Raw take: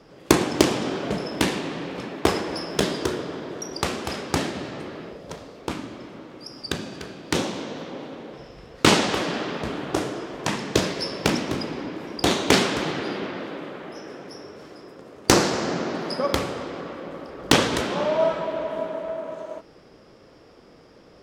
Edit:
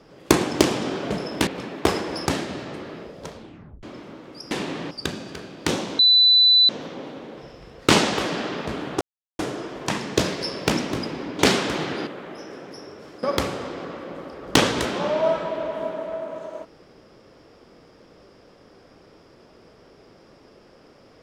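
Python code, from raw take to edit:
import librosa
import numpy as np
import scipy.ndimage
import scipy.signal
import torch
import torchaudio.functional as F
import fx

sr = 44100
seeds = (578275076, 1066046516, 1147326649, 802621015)

y = fx.edit(x, sr, fx.move(start_s=1.47, length_s=0.4, to_s=6.57),
    fx.cut(start_s=2.66, length_s=1.66),
    fx.tape_stop(start_s=5.37, length_s=0.52),
    fx.insert_tone(at_s=7.65, length_s=0.7, hz=3990.0, db=-11.5),
    fx.insert_silence(at_s=9.97, length_s=0.38),
    fx.cut(start_s=11.97, length_s=0.49),
    fx.cut(start_s=13.14, length_s=0.5),
    fx.cut(start_s=14.8, length_s=1.39), tone=tone)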